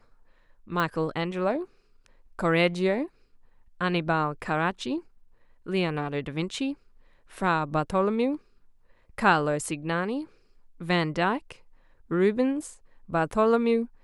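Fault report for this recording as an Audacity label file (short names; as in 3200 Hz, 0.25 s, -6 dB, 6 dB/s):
0.800000	0.800000	pop -14 dBFS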